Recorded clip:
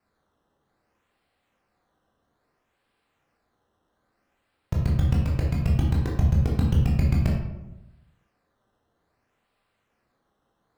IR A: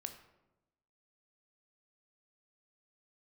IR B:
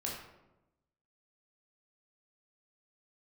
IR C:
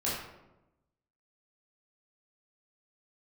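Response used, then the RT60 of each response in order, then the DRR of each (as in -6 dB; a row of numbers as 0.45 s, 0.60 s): B; 1.0 s, 1.0 s, 1.0 s; 6.5 dB, -3.5 dB, -8.0 dB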